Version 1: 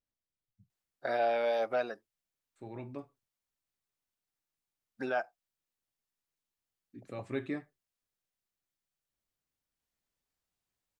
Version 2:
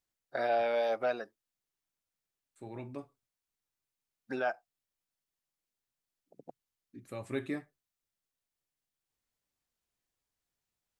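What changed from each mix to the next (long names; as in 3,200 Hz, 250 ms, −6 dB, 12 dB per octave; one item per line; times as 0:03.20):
first voice: entry −0.70 s
second voice: remove high-frequency loss of the air 84 metres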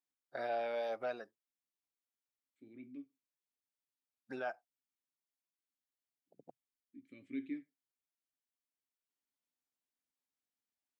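first voice −7.5 dB
second voice: add formant filter i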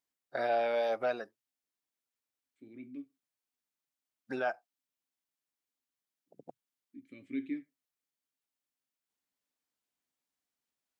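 first voice +7.0 dB
second voice +4.5 dB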